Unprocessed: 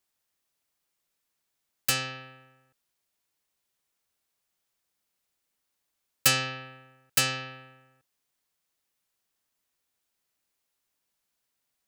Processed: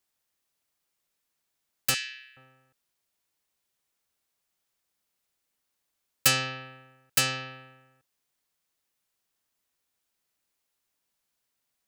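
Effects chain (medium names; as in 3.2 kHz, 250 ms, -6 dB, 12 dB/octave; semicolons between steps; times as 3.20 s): 1.94–2.37 s: steep high-pass 1.6 kHz 72 dB/octave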